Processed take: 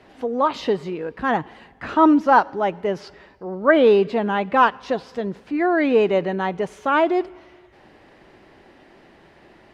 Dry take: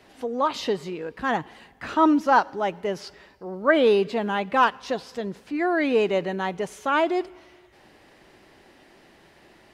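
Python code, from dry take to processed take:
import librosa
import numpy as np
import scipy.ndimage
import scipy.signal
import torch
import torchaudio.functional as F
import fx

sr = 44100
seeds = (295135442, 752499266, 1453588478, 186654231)

y = fx.lowpass(x, sr, hz=2200.0, slope=6)
y = y * 10.0 ** (4.5 / 20.0)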